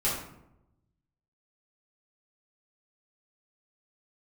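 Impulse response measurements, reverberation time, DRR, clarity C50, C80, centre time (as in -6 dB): 0.85 s, -9.5 dB, 2.5 dB, 6.0 dB, 48 ms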